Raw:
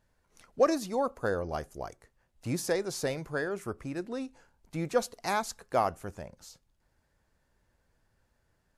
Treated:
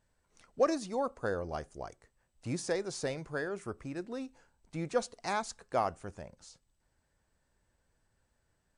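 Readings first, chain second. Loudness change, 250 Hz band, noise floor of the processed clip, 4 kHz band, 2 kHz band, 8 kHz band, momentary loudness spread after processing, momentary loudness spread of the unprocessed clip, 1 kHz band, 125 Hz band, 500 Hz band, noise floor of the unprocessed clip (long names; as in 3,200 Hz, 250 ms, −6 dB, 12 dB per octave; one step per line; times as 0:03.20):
−3.5 dB, −3.5 dB, −78 dBFS, −3.5 dB, −3.5 dB, −4.0 dB, 15 LU, 15 LU, −3.5 dB, −3.5 dB, −3.5 dB, −75 dBFS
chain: level −3.5 dB
MP2 192 kbit/s 32,000 Hz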